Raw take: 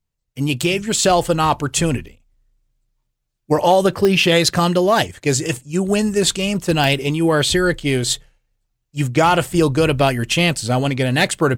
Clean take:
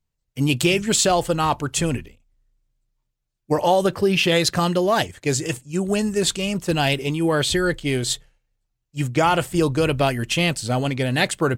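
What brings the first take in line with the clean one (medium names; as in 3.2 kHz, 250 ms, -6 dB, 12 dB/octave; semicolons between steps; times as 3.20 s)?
clip repair -4.5 dBFS; de-click; trim 0 dB, from 1.03 s -4 dB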